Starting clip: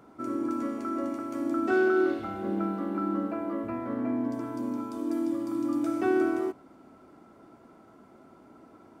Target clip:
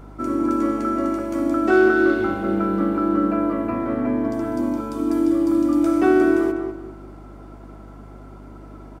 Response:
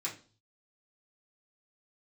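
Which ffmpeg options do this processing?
-filter_complex "[0:a]asplit=2[link_01][link_02];[link_02]adelay=199,lowpass=frequency=2100:poles=1,volume=-5.5dB,asplit=2[link_03][link_04];[link_04]adelay=199,lowpass=frequency=2100:poles=1,volume=0.31,asplit=2[link_05][link_06];[link_06]adelay=199,lowpass=frequency=2100:poles=1,volume=0.31,asplit=2[link_07][link_08];[link_08]adelay=199,lowpass=frequency=2100:poles=1,volume=0.31[link_09];[link_01][link_03][link_05][link_07][link_09]amix=inputs=5:normalize=0,aeval=exprs='val(0)+0.00355*(sin(2*PI*50*n/s)+sin(2*PI*2*50*n/s)/2+sin(2*PI*3*50*n/s)/3+sin(2*PI*4*50*n/s)/4+sin(2*PI*5*50*n/s)/5)':channel_layout=same,volume=8.5dB"

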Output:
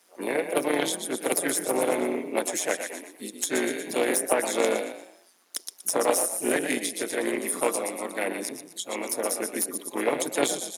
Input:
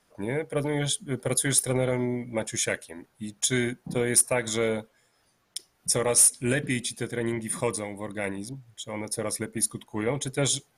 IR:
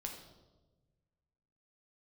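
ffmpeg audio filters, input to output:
-filter_complex "[0:a]asplit=5[link_01][link_02][link_03][link_04][link_05];[link_02]adelay=119,afreqshift=33,volume=-8.5dB[link_06];[link_03]adelay=238,afreqshift=66,volume=-17.6dB[link_07];[link_04]adelay=357,afreqshift=99,volume=-26.7dB[link_08];[link_05]adelay=476,afreqshift=132,volume=-35.9dB[link_09];[link_01][link_06][link_07][link_08][link_09]amix=inputs=5:normalize=0,acrossover=split=330|1600[link_10][link_11][link_12];[link_12]acompressor=threshold=-37dB:ratio=6[link_13];[link_10][link_11][link_13]amix=inputs=3:normalize=0,highshelf=frequency=4300:gain=8.5,asplit=2[link_14][link_15];[link_15]asetrate=52444,aresample=44100,atempo=0.840896,volume=-8dB[link_16];[link_14][link_16]amix=inputs=2:normalize=0,tremolo=f=180:d=0.71,aeval=exprs='0.251*(cos(1*acos(clip(val(0)/0.251,-1,1)))-cos(1*PI/2))+0.126*(cos(2*acos(clip(val(0)/0.251,-1,1)))-cos(2*PI/2))+0.00631*(cos(8*acos(clip(val(0)/0.251,-1,1)))-cos(8*PI/2))':channel_layout=same,highpass=frequency=260:width=0.5412,highpass=frequency=260:width=1.3066,volume=5dB"

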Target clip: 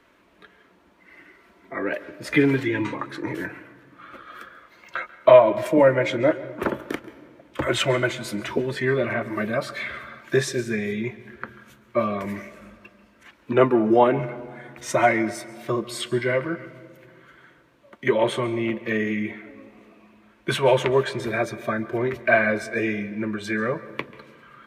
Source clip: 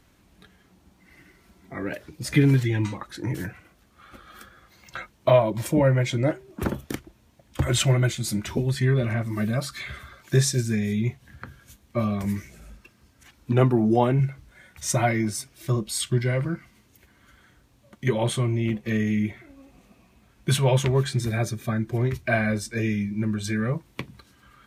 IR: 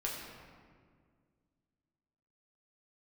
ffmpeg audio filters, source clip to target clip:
-filter_complex "[0:a]asuperstop=centerf=780:order=4:qfactor=7.5,acrossover=split=290 3000:gain=0.112 1 0.178[link_01][link_02][link_03];[link_01][link_02][link_03]amix=inputs=3:normalize=0,asplit=2[link_04][link_05];[1:a]atrim=start_sample=2205,adelay=138[link_06];[link_05][link_06]afir=irnorm=-1:irlink=0,volume=-18.5dB[link_07];[link_04][link_07]amix=inputs=2:normalize=0,volume=7dB"

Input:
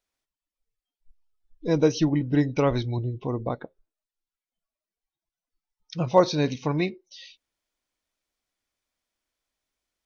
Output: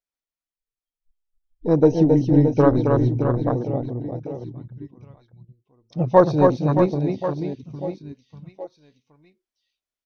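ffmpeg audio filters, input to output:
ffmpeg -i in.wav -af "aeval=exprs='0.531*(cos(1*acos(clip(val(0)/0.531,-1,1)))-cos(1*PI/2))+0.0473*(cos(5*acos(clip(val(0)/0.531,-1,1)))-cos(5*PI/2))+0.0266*(cos(7*acos(clip(val(0)/0.531,-1,1)))-cos(7*PI/2))+0.0106*(cos(8*acos(clip(val(0)/0.531,-1,1)))-cos(8*PI/2))':channel_layout=same,aecho=1:1:270|621|1077|1670|2442:0.631|0.398|0.251|0.158|0.1,afwtdn=0.0501,volume=4dB" out.wav

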